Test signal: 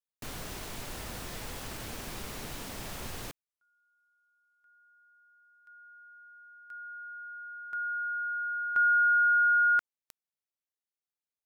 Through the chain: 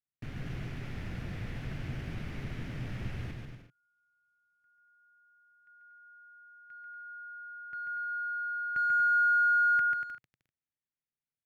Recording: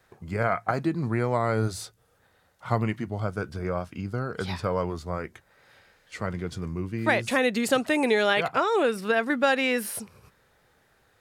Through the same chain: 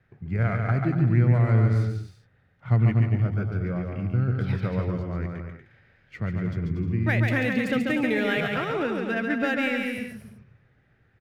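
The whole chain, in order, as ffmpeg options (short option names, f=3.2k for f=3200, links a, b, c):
-af "adynamicsmooth=sensitivity=4.5:basefreq=4.1k,equalizer=f=125:t=o:w=1:g=9,equalizer=f=500:t=o:w=1:g=-5,equalizer=f=1k:t=o:w=1:g=-11,equalizer=f=2k:t=o:w=1:g=3,equalizer=f=4k:t=o:w=1:g=-7,equalizer=f=8k:t=o:w=1:g=-11,aecho=1:1:140|238|306.6|354.6|388.2:0.631|0.398|0.251|0.158|0.1"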